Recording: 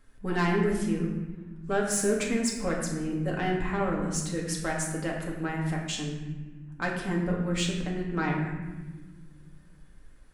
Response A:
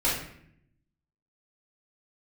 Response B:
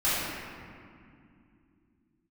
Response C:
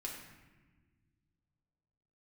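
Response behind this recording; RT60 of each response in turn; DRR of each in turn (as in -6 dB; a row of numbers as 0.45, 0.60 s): C; 0.65 s, 2.5 s, not exponential; -8.0, -14.0, -2.5 dB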